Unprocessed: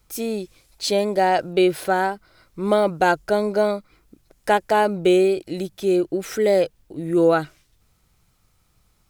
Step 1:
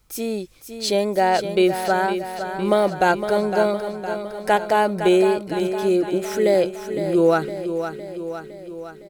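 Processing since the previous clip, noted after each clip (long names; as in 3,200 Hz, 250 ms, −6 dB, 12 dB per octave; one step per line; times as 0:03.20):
repeating echo 510 ms, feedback 59%, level −9 dB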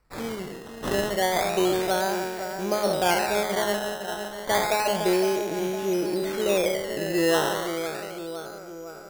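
peak hold with a decay on every bin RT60 1.71 s
hum removal 105.4 Hz, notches 7
sample-and-hold swept by an LFO 13×, swing 100% 0.31 Hz
level −7.5 dB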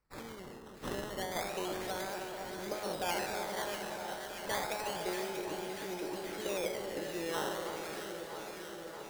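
harmonic and percussive parts rebalanced harmonic −10 dB
notch filter 680 Hz, Q 16
delay that swaps between a low-pass and a high-pass 318 ms, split 1,300 Hz, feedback 86%, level −6.5 dB
level −7.5 dB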